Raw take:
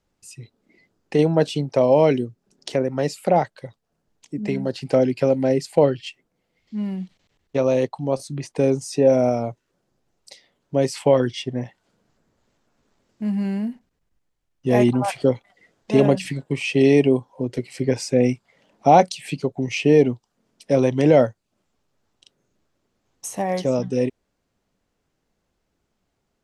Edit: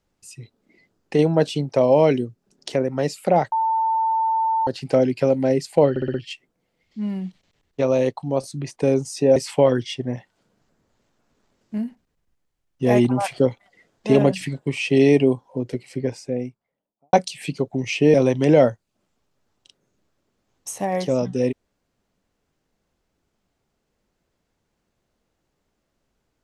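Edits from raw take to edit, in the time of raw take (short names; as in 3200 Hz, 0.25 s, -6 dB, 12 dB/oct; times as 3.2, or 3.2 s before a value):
3.52–4.67 bleep 894 Hz -17.5 dBFS
5.9 stutter 0.06 s, 5 plays
9.12–10.84 cut
13.26–13.62 cut
17.16–18.97 studio fade out
19.98–20.71 cut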